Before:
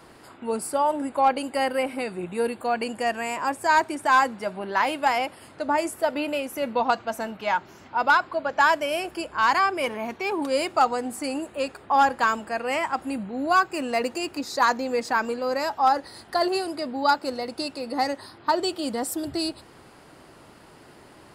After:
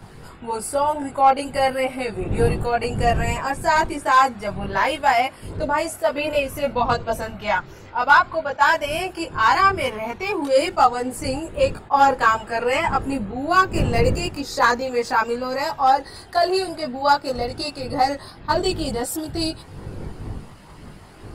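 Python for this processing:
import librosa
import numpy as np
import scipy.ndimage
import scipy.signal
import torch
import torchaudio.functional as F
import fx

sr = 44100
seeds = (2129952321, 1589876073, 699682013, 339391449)

y = fx.dmg_wind(x, sr, seeds[0], corner_hz=260.0, level_db=-39.0)
y = fx.chorus_voices(y, sr, voices=6, hz=0.33, base_ms=20, depth_ms=1.4, mix_pct=55)
y = fx.attack_slew(y, sr, db_per_s=560.0)
y = y * 10.0 ** (6.5 / 20.0)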